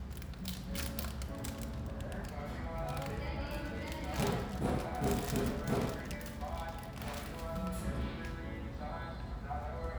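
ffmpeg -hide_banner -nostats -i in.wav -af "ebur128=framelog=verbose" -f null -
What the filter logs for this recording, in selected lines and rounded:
Integrated loudness:
  I:         -39.2 LUFS
  Threshold: -49.2 LUFS
Loudness range:
  LRA:         4.8 LU
  Threshold: -58.6 LUFS
  LRA low:   -41.4 LUFS
  LRA high:  -36.6 LUFS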